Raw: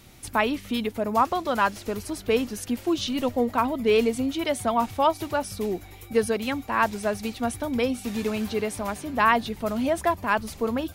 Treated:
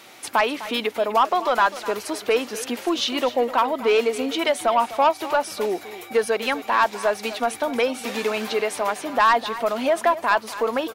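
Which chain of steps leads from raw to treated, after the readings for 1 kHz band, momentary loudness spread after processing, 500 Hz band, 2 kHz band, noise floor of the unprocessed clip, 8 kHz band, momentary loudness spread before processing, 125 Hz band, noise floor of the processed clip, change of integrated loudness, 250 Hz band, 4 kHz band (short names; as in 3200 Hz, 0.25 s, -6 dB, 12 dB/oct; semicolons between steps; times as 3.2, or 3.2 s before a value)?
+4.5 dB, 6 LU, +4.0 dB, +4.0 dB, -45 dBFS, +3.0 dB, 8 LU, under -10 dB, -42 dBFS, +3.5 dB, -3.0 dB, +6.0 dB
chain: HPF 520 Hz 12 dB/oct; high shelf 5200 Hz -9.5 dB; in parallel at +1 dB: compressor, threshold -32 dBFS, peak gain reduction 15.5 dB; on the sum: soft clip -14.5 dBFS, distortion -15 dB; echo 0.253 s -15 dB; gain +5 dB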